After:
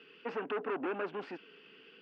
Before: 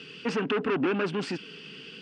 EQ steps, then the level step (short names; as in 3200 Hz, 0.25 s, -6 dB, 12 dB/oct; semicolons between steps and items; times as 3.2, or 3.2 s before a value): dynamic EQ 700 Hz, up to +5 dB, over -42 dBFS, Q 1.4; BPF 360–2100 Hz; -7.5 dB